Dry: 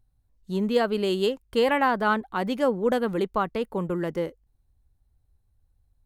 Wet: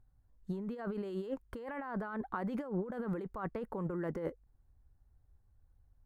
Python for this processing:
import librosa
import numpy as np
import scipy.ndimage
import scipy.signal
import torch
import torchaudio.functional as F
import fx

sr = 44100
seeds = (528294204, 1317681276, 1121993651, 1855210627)

y = fx.over_compress(x, sr, threshold_db=-32.0, ratio=-1.0)
y = fx.high_shelf_res(y, sr, hz=2200.0, db=-9.5, q=1.5)
y = y * 10.0 ** (-7.0 / 20.0)